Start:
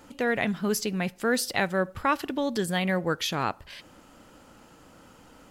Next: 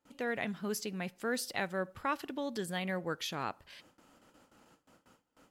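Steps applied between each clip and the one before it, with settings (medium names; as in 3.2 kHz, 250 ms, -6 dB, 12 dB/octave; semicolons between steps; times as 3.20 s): gate with hold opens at -42 dBFS; bass shelf 73 Hz -10 dB; trim -9 dB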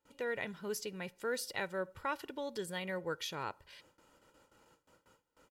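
comb 2.1 ms, depth 49%; trim -3.5 dB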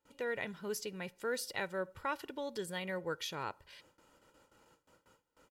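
no audible change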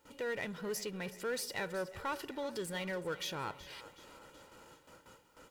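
power-law waveshaper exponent 0.7; two-band feedback delay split 390 Hz, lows 151 ms, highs 373 ms, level -15.5 dB; trim -4 dB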